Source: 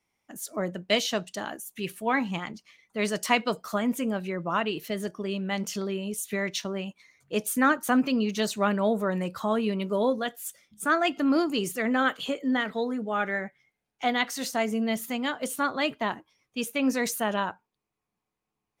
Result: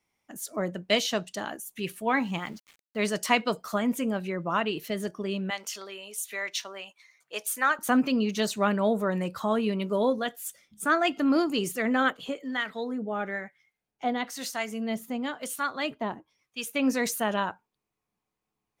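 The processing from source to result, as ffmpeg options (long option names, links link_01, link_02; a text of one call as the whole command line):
ffmpeg -i in.wav -filter_complex "[0:a]asettb=1/sr,asplit=3[link_01][link_02][link_03];[link_01]atrim=end=2.164[link_04];[link_02]atrim=start=2.16:end=3.04,asetpts=PTS-STARTPTS,afade=type=in:duration=0.004:curve=qsin,afade=type=out:start_time=0.876:duration=0.004:curve=qsin,aeval=exprs='val(0)*gte(abs(val(0)),0.00299)':channel_layout=same[link_05];[link_03]atrim=start=3.036[link_06];[link_04][link_05]acrossfade=duration=0.004:curve1=hsin:curve2=qsin[link_07];[link_07][link_06]acrossfade=duration=0.004:curve1=qsin:curve2=hsin,asettb=1/sr,asplit=3[link_08][link_09][link_10];[link_08]atrim=end=5.504[link_11];[link_09]atrim=start=5.5:end=7.79,asetpts=PTS-STARTPTS,afade=type=in:duration=0.004:curve=qsin,afade=type=out:start_time=2.286:duration=0.004:curve=qsin,highpass=760[link_12];[link_10]atrim=start=7.786[link_13];[link_11][link_12]acrossfade=duration=0.004:curve1=hsin:curve2=qsin[link_14];[link_14][link_13]acrossfade=duration=0.004:curve1=qsin:curve2=hsin,asettb=1/sr,asplit=3[link_15][link_16][link_17];[link_15]atrim=end=12.104[link_18];[link_16]atrim=start=12.1:end=16.74,asetpts=PTS-STARTPTS,afade=type=in:duration=0.004:curve=qsin,afade=type=out:start_time=4.636:duration=0.004:curve=qsin,acrossover=split=900[link_19][link_20];[link_19]aeval=exprs='val(0)*(1-0.7/2+0.7/2*cos(2*PI*1*n/s))':channel_layout=same[link_21];[link_20]aeval=exprs='val(0)*(1-0.7/2-0.7/2*cos(2*PI*1*n/s))':channel_layout=same[link_22];[link_21][link_22]amix=inputs=2:normalize=0[link_23];[link_17]atrim=start=16.736[link_24];[link_18][link_23]acrossfade=duration=0.004:curve1=hsin:curve2=qsin[link_25];[link_25][link_24]acrossfade=duration=0.004:curve1=qsin:curve2=hsin" out.wav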